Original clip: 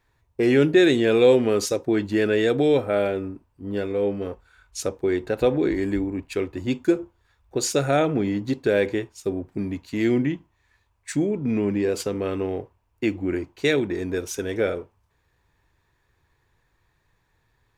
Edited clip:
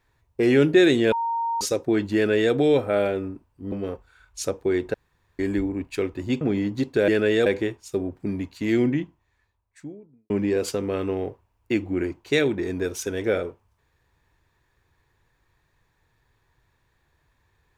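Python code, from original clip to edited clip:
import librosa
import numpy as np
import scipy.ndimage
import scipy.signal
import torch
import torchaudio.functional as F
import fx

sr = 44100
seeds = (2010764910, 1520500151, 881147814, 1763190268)

y = fx.studio_fade_out(x, sr, start_s=10.1, length_s=1.52)
y = fx.edit(y, sr, fx.bleep(start_s=1.12, length_s=0.49, hz=925.0, db=-22.5),
    fx.duplicate(start_s=2.15, length_s=0.38, to_s=8.78),
    fx.cut(start_s=3.72, length_s=0.38),
    fx.room_tone_fill(start_s=5.32, length_s=0.45),
    fx.cut(start_s=6.79, length_s=1.32), tone=tone)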